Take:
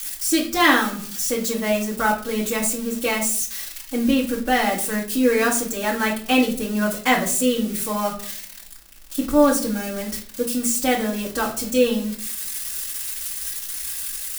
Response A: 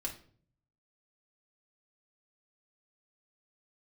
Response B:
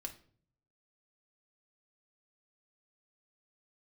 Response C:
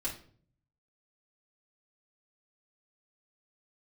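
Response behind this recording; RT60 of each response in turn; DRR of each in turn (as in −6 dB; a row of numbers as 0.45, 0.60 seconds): C; 0.50, 0.50, 0.50 seconds; −1.0, 3.0, −6.5 decibels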